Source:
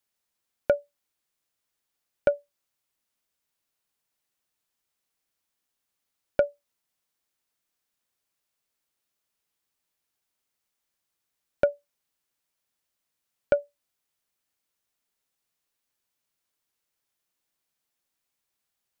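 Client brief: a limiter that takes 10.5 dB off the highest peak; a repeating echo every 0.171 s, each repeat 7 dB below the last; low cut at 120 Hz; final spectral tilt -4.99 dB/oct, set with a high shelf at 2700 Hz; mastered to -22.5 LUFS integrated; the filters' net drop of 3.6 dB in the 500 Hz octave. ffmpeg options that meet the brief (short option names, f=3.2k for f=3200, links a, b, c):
-af "highpass=120,equalizer=f=500:t=o:g=-4.5,highshelf=f=2.7k:g=5.5,alimiter=limit=-20dB:level=0:latency=1,aecho=1:1:171|342|513|684|855:0.447|0.201|0.0905|0.0407|0.0183,volume=18dB"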